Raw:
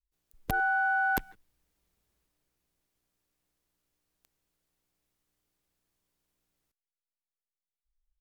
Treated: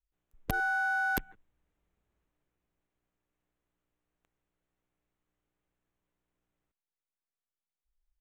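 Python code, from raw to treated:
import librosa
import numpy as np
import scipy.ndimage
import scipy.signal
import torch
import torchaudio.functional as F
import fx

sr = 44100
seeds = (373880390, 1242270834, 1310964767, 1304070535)

y = fx.wiener(x, sr, points=9)
y = fx.dynamic_eq(y, sr, hz=840.0, q=1.3, threshold_db=-40.0, ratio=4.0, max_db=-5)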